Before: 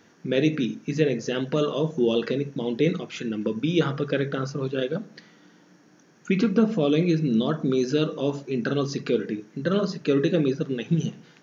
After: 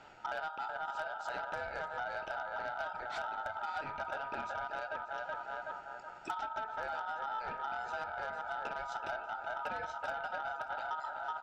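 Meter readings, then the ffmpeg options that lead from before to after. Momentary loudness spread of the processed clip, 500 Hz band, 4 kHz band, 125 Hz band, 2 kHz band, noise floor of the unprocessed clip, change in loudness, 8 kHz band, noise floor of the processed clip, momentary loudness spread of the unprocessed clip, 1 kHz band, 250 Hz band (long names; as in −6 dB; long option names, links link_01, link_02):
2 LU, −18.5 dB, −16.5 dB, −33.0 dB, −3.5 dB, −56 dBFS, −14.5 dB, can't be measured, −49 dBFS, 7 LU, +3.0 dB, −35.0 dB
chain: -filter_complex "[0:a]asplit=2[link_01][link_02];[link_02]adelay=375,lowpass=frequency=810:poles=1,volume=-7dB,asplit=2[link_03][link_04];[link_04]adelay=375,lowpass=frequency=810:poles=1,volume=0.45,asplit=2[link_05][link_06];[link_06]adelay=375,lowpass=frequency=810:poles=1,volume=0.45,asplit=2[link_07][link_08];[link_08]adelay=375,lowpass=frequency=810:poles=1,volume=0.45,asplit=2[link_09][link_10];[link_10]adelay=375,lowpass=frequency=810:poles=1,volume=0.45[link_11];[link_03][link_05][link_07][link_09][link_11]amix=inputs=5:normalize=0[link_12];[link_01][link_12]amix=inputs=2:normalize=0,aeval=exprs='val(0)*sin(2*PI*1100*n/s)':channel_layout=same,aemphasis=mode=reproduction:type=75kf,acompressor=threshold=-38dB:ratio=20,aeval=exprs='0.0376*(cos(1*acos(clip(val(0)/0.0376,-1,1)))-cos(1*PI/2))+0.00376*(cos(5*acos(clip(val(0)/0.0376,-1,1)))-cos(5*PI/2))':channel_layout=same,asplit=2[link_13][link_14];[link_14]aecho=0:1:587:0.126[link_15];[link_13][link_15]amix=inputs=2:normalize=0,volume=1.5dB"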